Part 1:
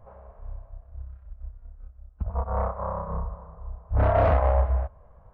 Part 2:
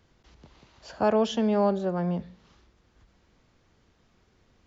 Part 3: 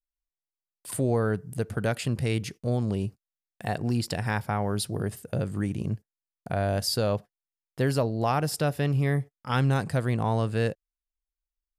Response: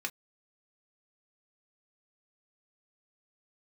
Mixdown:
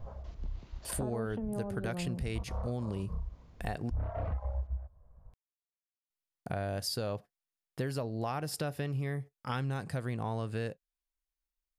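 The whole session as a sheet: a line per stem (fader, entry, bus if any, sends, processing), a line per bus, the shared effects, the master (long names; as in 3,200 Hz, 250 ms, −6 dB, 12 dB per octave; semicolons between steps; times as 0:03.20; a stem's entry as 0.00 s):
−2.0 dB, 0.00 s, no send, low-shelf EQ 250 Hz +12 dB; reverb reduction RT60 1.5 s; automatic ducking −9 dB, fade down 0.70 s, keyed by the second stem
−4.0 dB, 0.00 s, no send, low-shelf EQ 340 Hz +10 dB; downward compressor 6 to 1, threshold −24 dBFS, peak gain reduction 10 dB; treble cut that deepens with the level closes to 1,300 Hz, closed at −24.5 dBFS
−2.0 dB, 0.00 s, muted 0:03.90–0:06.10, send −15 dB, no processing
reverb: on, pre-delay 3 ms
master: downward compressor 4 to 1, threshold −33 dBFS, peak gain reduction 12.5 dB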